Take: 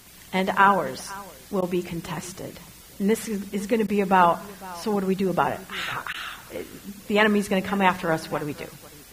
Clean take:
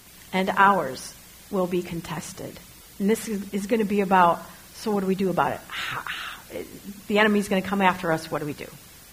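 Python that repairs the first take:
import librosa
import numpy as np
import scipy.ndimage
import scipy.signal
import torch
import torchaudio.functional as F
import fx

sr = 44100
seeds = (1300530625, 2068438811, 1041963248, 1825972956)

y = fx.fix_interpolate(x, sr, at_s=(1.61, 3.87, 6.13), length_ms=11.0)
y = fx.fix_echo_inverse(y, sr, delay_ms=503, level_db=-20.5)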